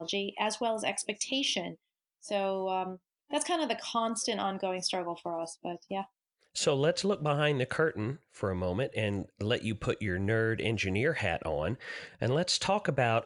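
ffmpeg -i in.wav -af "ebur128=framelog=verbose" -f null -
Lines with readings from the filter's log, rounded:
Integrated loudness:
  I:         -31.6 LUFS
  Threshold: -41.8 LUFS
Loudness range:
  LRA:         2.5 LU
  Threshold: -52.1 LUFS
  LRA low:   -33.3 LUFS
  LRA high:  -30.8 LUFS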